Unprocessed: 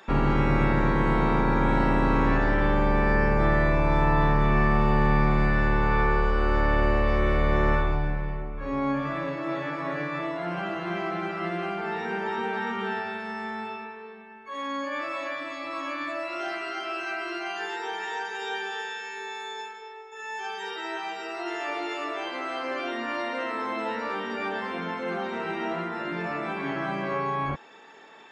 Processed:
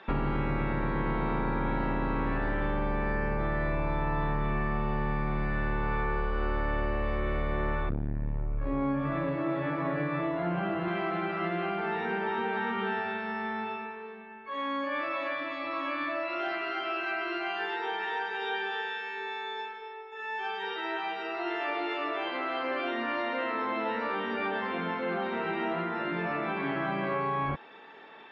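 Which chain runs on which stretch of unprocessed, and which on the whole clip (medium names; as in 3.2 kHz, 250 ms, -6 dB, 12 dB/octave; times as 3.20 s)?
7.89–10.88 s: tilt EQ -2 dB/octave + transformer saturation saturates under 200 Hz
whole clip: low-pass 3.9 kHz 24 dB/octave; compression, threshold -26 dBFS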